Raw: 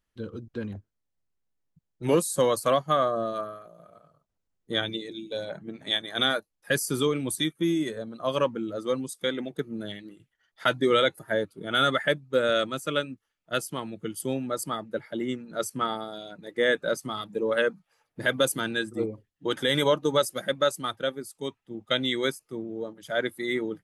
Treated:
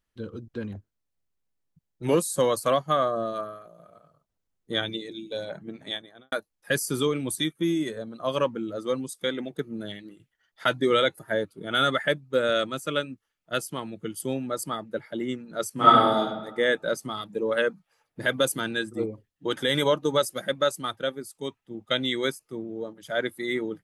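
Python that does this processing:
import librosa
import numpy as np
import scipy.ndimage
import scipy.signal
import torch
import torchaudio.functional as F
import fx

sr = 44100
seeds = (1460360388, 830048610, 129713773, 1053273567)

y = fx.studio_fade_out(x, sr, start_s=5.72, length_s=0.6)
y = fx.reverb_throw(y, sr, start_s=15.74, length_s=0.43, rt60_s=1.1, drr_db=-11.5)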